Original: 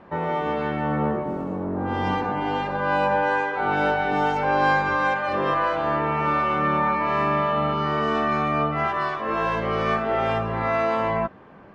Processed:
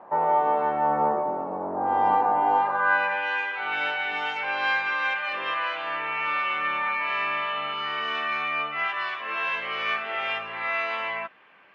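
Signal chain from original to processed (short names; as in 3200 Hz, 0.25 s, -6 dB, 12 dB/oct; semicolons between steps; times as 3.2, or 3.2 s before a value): band-pass sweep 810 Hz -> 2600 Hz, 2.53–3.23; gain +7.5 dB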